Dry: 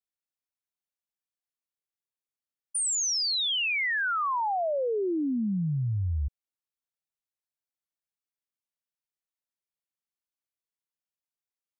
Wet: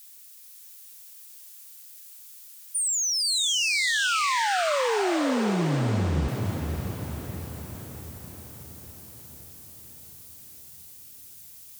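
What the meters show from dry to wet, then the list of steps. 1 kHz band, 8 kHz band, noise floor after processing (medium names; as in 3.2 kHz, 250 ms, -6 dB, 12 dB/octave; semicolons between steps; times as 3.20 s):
+3.5 dB, +4.0 dB, -48 dBFS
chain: zero-crossing glitches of -42.5 dBFS; vibrato 12 Hz 12 cents; echo that smears into a reverb 517 ms, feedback 60%, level -4.5 dB; trim +1.5 dB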